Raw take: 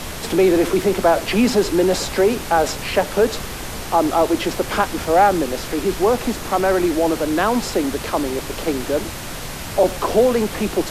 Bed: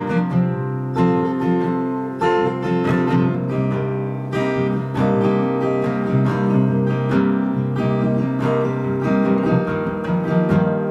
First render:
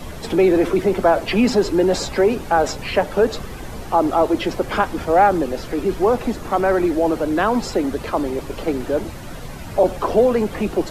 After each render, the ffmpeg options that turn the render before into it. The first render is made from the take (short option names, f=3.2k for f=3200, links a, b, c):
-af "afftdn=nr=11:nf=-30"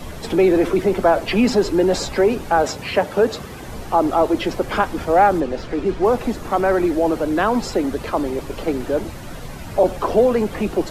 -filter_complex "[0:a]asettb=1/sr,asplit=3[a][b][c];[a]atrim=end=2.624[d];[b]atrim=start=2.62:end=3.67,asetpts=PTS-STARTPTS,afade=t=in:d=0.004:c=qsin,afade=t=out:st=1.046:d=0.004:c=qsin,highpass=73[e];[c]atrim=start=3.666[f];[d][e]acrossfade=d=0.004:c1=hsin:c2=qsin[g];[g][f]acrossfade=d=0.004:c1=qsin:c2=hsin,asettb=1/sr,asplit=3[h][i][j];[h]atrim=end=5.404[k];[i]atrim=start=5.4:end=6.05,asetpts=PTS-STARTPTS,afade=t=in:d=0.004:c=qsin,afade=t=out:st=0.646:d=0.004:c=qsin,adynamicsmooth=sensitivity=4:basefreq=5.2k[l];[j]atrim=start=6.046[m];[k][l]acrossfade=d=0.004:c1=hsin:c2=qsin[n];[n][m]acrossfade=d=0.004:c1=qsin:c2=hsin"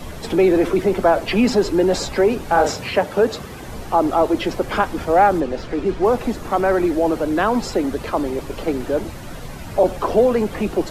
-filter_complex "[0:a]asettb=1/sr,asplit=3[a][b][c];[a]atrim=end=2.454[d];[b]atrim=start=2.45:end=2.89,asetpts=PTS-STARTPTS,afade=t=in:d=0.004:c=qsin,afade=t=out:st=0.436:d=0.004:c=qsin,asplit=2[e][f];[f]adelay=40,volume=-4dB[g];[e][g]amix=inputs=2:normalize=0,atrim=end_sample=19404[h];[c]atrim=start=2.886[i];[d][h]acrossfade=d=0.004:c1=hsin:c2=qsin[j];[j][i]acrossfade=d=0.004:c1=qsin:c2=hsin"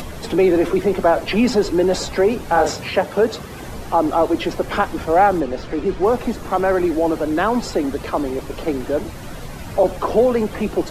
-af "acompressor=mode=upward:threshold=-27dB:ratio=2.5"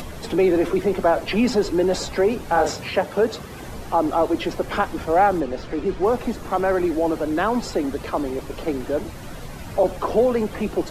-af "volume=-3dB"